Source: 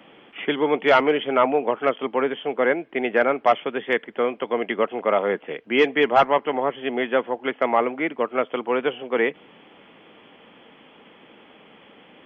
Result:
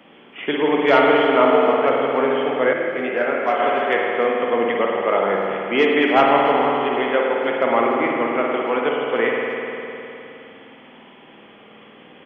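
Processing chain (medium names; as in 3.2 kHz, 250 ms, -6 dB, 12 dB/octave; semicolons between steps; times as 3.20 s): speakerphone echo 290 ms, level -24 dB; spring tank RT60 3.2 s, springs 51 ms, chirp 50 ms, DRR -2 dB; 2.73–3.60 s: detune thickener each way 23 cents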